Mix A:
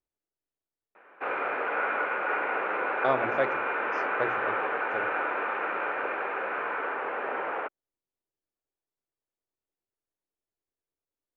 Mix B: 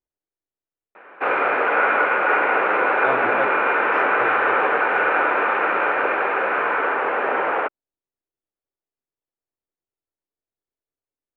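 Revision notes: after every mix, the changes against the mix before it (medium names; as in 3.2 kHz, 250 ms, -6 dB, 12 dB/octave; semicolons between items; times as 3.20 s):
speech: add low-pass 3.8 kHz 12 dB/octave; background +10.5 dB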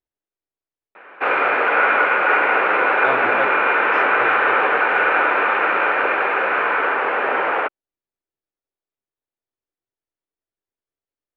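master: add treble shelf 2.1 kHz +8 dB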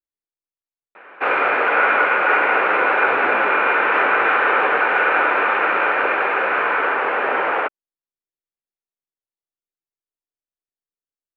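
speech -9.5 dB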